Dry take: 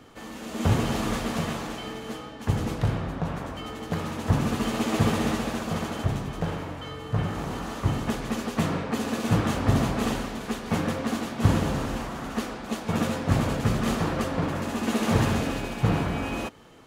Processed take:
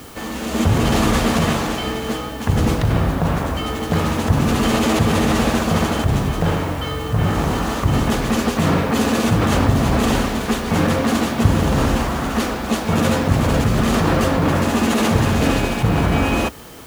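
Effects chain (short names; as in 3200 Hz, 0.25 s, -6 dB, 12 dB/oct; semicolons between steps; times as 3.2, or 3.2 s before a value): bell 67 Hz +11.5 dB 0.36 oct; in parallel at +1.5 dB: negative-ratio compressor -27 dBFS, ratio -0.5; on the sum: requantised 8-bit, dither triangular; gain +3.5 dB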